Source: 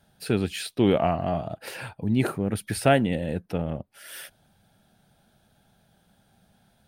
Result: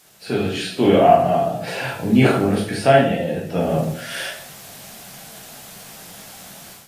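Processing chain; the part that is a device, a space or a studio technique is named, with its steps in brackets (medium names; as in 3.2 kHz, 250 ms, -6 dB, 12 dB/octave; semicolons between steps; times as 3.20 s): filmed off a television (band-pass 180–6600 Hz; peaking EQ 690 Hz +5.5 dB 0.26 oct; reverberation RT60 0.60 s, pre-delay 13 ms, DRR -3.5 dB; white noise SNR 29 dB; level rider gain up to 12 dB; trim -1 dB; AAC 48 kbps 32 kHz)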